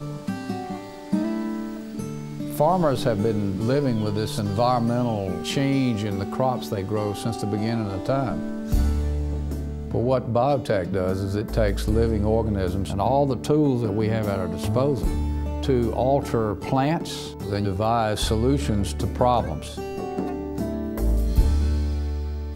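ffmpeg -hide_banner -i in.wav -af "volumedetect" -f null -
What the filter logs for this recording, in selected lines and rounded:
mean_volume: -23.3 dB
max_volume: -5.3 dB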